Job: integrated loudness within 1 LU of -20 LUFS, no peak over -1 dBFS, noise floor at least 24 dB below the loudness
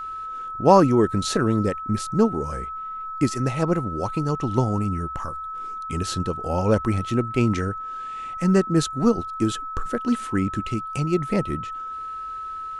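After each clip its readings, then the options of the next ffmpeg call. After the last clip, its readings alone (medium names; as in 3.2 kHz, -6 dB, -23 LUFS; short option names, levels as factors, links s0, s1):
steady tone 1.3 kHz; tone level -30 dBFS; loudness -24.0 LUFS; peak level -2.5 dBFS; loudness target -20.0 LUFS
-> -af "bandreject=f=1300:w=30"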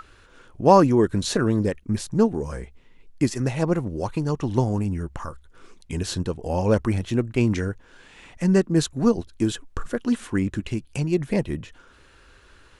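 steady tone not found; loudness -23.5 LUFS; peak level -3.0 dBFS; loudness target -20.0 LUFS
-> -af "volume=1.5,alimiter=limit=0.891:level=0:latency=1"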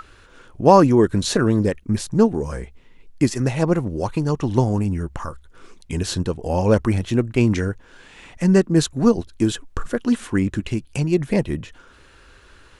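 loudness -20.0 LUFS; peak level -1.0 dBFS; noise floor -50 dBFS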